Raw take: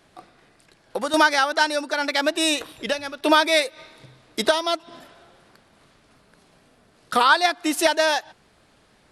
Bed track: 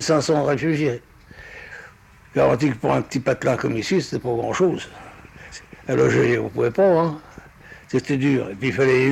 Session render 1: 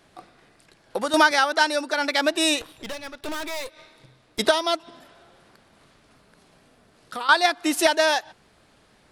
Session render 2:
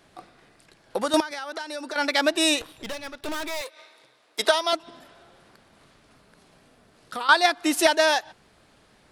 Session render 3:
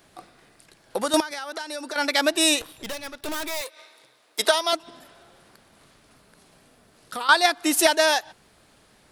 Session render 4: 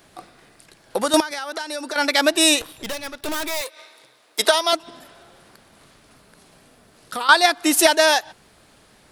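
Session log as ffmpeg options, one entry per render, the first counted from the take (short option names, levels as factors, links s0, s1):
-filter_complex "[0:a]asettb=1/sr,asplit=3[s0][s1][s2];[s0]atrim=end=1.314[s3];[s1]atrim=start=1.31:end=1.98,asetpts=PTS-STARTPTS,afade=t=in:d=0.004:c=qsin,afade=t=out:st=0.666:d=0.004:c=qsin,highpass=150[s4];[s2]atrim=start=1.976[s5];[s3][s4]acrossfade=d=0.004:c1=hsin:c2=qsin[s6];[s6][s5]acrossfade=d=0.004:c1=qsin:c2=hsin,asettb=1/sr,asplit=3[s7][s8][s9];[s7]atrim=end=2.614[s10];[s8]atrim=start=2.61:end=4.39,asetpts=PTS-STARTPTS,afade=t=in:d=0.004:c=qsin,afade=t=out:st=1.776:d=0.004:c=qsin,aeval=exprs='(tanh(31.6*val(0)+0.8)-tanh(0.8))/31.6':c=same[s11];[s9]atrim=start=4.386[s12];[s10][s11]acrossfade=d=0.004:c1=hsin:c2=qsin[s13];[s13][s12]acrossfade=d=0.004:c1=qsin:c2=hsin,asettb=1/sr,asplit=3[s14][s15][s16];[s14]atrim=end=4.904[s17];[s15]atrim=start=4.9:end=7.29,asetpts=PTS-STARTPTS,afade=t=in:d=0.004:c=qsin,afade=t=out:st=2.386:d=0.004:c=qsin,acompressor=threshold=0.00282:ratio=1.5:attack=3.2:release=140:knee=1:detection=peak[s18];[s16]atrim=start=7.286[s19];[s17][s18]acrossfade=d=0.004:c1=hsin:c2=qsin[s20];[s20][s19]acrossfade=d=0.004:c1=qsin:c2=hsin"
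-filter_complex "[0:a]asettb=1/sr,asplit=3[s0][s1][s2];[s0]atrim=end=1.204[s3];[s1]atrim=start=1.2:end=1.96,asetpts=PTS-STARTPTS,afade=t=in:d=0.004:c=qsin,afade=t=out:st=0.756:d=0.004:c=qsin,acompressor=threshold=0.0355:ratio=12:attack=3.2:release=140:knee=1:detection=peak[s4];[s2]atrim=start=1.956[s5];[s3][s4]acrossfade=d=0.004:c1=hsin:c2=qsin[s6];[s6][s5]acrossfade=d=0.004:c1=qsin:c2=hsin,asettb=1/sr,asplit=3[s7][s8][s9];[s7]atrim=end=3.614[s10];[s8]atrim=start=3.61:end=4.73,asetpts=PTS-STARTPTS,afade=t=in:d=0.004:c=qsin,afade=t=out:st=1.116:d=0.004:c=qsin,highpass=460[s11];[s9]atrim=start=4.726[s12];[s10][s11]acrossfade=d=0.004:c1=hsin:c2=qsin[s13];[s13][s12]acrossfade=d=0.004:c1=qsin:c2=hsin"
-af "highshelf=f=8200:g=10.5"
-af "volume=1.58,alimiter=limit=0.794:level=0:latency=1"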